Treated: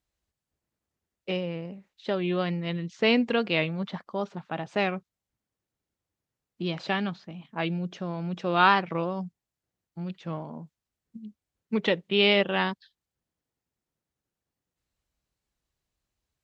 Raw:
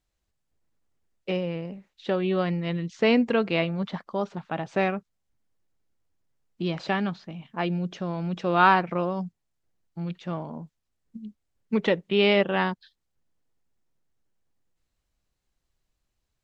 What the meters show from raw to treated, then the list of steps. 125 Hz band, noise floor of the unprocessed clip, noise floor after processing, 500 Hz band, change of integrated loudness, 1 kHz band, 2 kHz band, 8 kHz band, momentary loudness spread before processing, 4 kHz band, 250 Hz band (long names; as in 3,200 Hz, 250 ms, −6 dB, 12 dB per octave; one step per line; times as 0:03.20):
−2.5 dB, −80 dBFS, below −85 dBFS, −2.5 dB, −1.5 dB, −2.0 dB, 0.0 dB, can't be measured, 18 LU, +3.5 dB, −2.5 dB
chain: high-pass filter 45 Hz
dynamic equaliser 3,500 Hz, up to +7 dB, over −42 dBFS, Q 1.1
wow of a warped record 45 rpm, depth 100 cents
level −2.5 dB